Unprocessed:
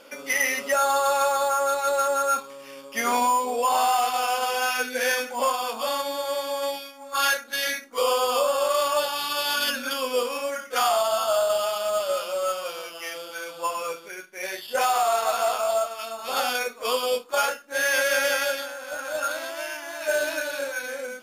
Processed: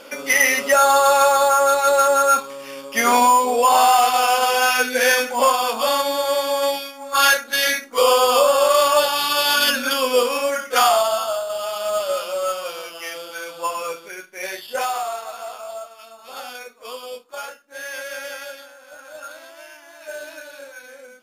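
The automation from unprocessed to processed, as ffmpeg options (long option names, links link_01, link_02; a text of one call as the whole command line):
ffmpeg -i in.wav -af "volume=15.5dB,afade=type=out:start_time=10.78:duration=0.67:silence=0.237137,afade=type=in:start_time=11.45:duration=0.46:silence=0.398107,afade=type=out:start_time=14.46:duration=0.81:silence=0.251189" out.wav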